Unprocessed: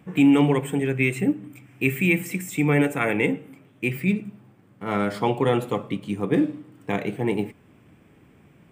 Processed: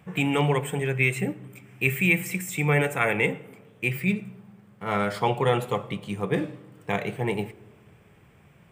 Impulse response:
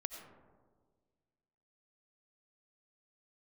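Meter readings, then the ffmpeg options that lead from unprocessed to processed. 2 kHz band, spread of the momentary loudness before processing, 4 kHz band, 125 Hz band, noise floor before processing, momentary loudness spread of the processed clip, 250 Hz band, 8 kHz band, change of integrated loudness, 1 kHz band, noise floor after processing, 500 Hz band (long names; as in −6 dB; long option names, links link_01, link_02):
+1.0 dB, 10 LU, +1.0 dB, −0.5 dB, −56 dBFS, 11 LU, −7.5 dB, +1.5 dB, −2.0 dB, +1.0 dB, −56 dBFS, −2.0 dB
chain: -filter_complex "[0:a]equalizer=frequency=280:width_type=o:width=0.68:gain=-13,asplit=2[link_01][link_02];[1:a]atrim=start_sample=2205[link_03];[link_02][link_03]afir=irnorm=-1:irlink=0,volume=-13.5dB[link_04];[link_01][link_04]amix=inputs=2:normalize=0"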